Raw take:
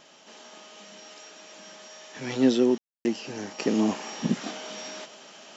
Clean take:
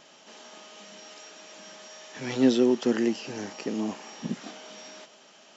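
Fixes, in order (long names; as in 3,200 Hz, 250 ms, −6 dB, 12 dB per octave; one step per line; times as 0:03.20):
ambience match 0:02.78–0:03.05
downward expander −41 dBFS, range −21 dB
level correction −6.5 dB, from 0:03.59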